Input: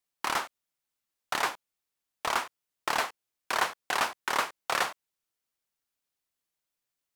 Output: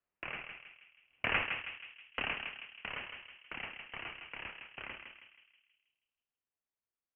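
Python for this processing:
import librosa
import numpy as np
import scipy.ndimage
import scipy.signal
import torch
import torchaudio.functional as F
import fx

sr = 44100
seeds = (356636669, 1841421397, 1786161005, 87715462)

p1 = fx.doppler_pass(x, sr, speed_mps=21, closest_m=1.4, pass_at_s=1.57)
p2 = scipy.signal.sosfilt(scipy.signal.butter(2, 830.0, 'highpass', fs=sr, output='sos'), p1)
p3 = fx.high_shelf(p2, sr, hz=2100.0, db=9.0)
p4 = fx.level_steps(p3, sr, step_db=16)
p5 = p3 + F.gain(torch.from_numpy(p4), -2.0).numpy()
p6 = fx.quant_float(p5, sr, bits=4)
p7 = fx.echo_filtered(p6, sr, ms=160, feedback_pct=49, hz=1700.0, wet_db=-4.5)
p8 = fx.freq_invert(p7, sr, carrier_hz=3700)
p9 = fx.band_squash(p8, sr, depth_pct=40)
y = F.gain(torch.from_numpy(p9), 9.5).numpy()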